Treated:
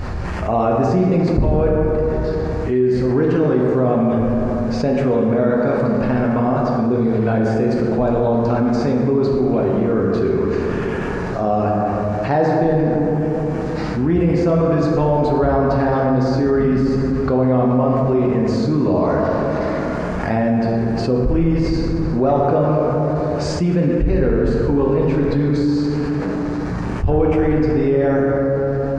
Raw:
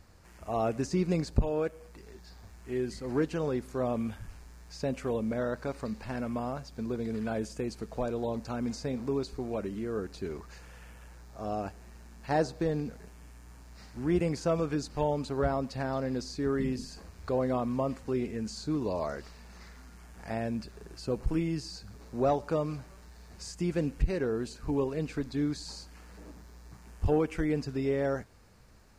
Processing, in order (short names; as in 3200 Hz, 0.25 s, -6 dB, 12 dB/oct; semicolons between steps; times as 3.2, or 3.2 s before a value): tape spacing loss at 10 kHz 25 dB; plate-style reverb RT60 2.5 s, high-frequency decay 0.45×, DRR -2 dB; fast leveller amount 70%; gain +6 dB